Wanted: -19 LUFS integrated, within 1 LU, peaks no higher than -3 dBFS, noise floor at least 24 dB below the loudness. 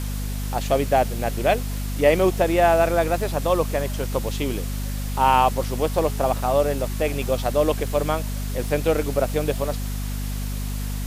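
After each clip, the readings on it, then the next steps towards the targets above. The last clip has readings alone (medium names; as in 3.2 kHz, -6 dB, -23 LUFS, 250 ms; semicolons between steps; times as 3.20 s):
hum 50 Hz; highest harmonic 250 Hz; hum level -25 dBFS; noise floor -27 dBFS; noise floor target -47 dBFS; loudness -23.0 LUFS; peak level -4.0 dBFS; loudness target -19.0 LUFS
-> hum notches 50/100/150/200/250 Hz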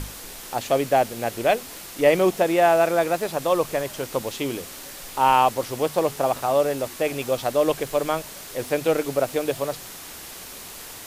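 hum not found; noise floor -39 dBFS; noise floor target -47 dBFS
-> noise reduction 8 dB, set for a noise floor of -39 dBFS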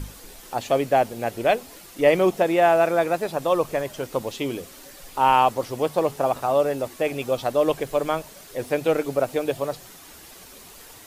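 noise floor -45 dBFS; noise floor target -47 dBFS
-> noise reduction 6 dB, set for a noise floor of -45 dBFS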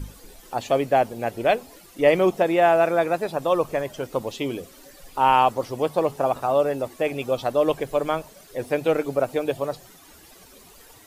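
noise floor -50 dBFS; loudness -23.0 LUFS; peak level -5.0 dBFS; loudness target -19.0 LUFS
-> trim +4 dB; peak limiter -3 dBFS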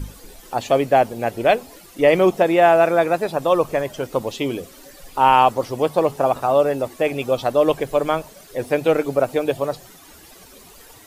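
loudness -19.0 LUFS; peak level -3.0 dBFS; noise floor -46 dBFS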